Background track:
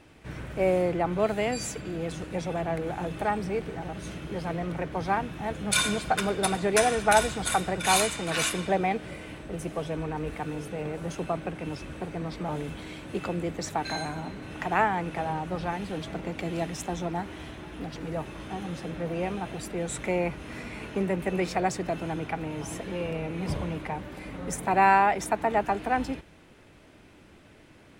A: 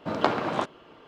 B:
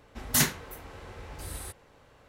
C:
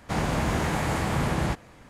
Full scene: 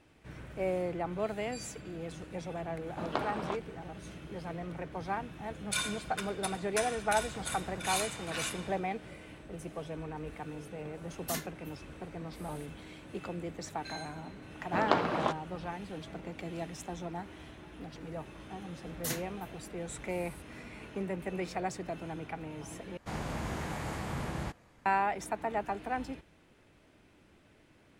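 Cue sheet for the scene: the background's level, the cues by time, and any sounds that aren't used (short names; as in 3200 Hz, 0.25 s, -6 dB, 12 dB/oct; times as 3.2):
background track -8.5 dB
2.91 add A -10 dB
7.25 add C -12.5 dB + compressor, threshold -32 dBFS
10.94 add B -11 dB + endless flanger 2.5 ms -1.9 Hz
14.67 add A -3.5 dB
18.7 add B -13 dB
22.97 replace with C -11 dB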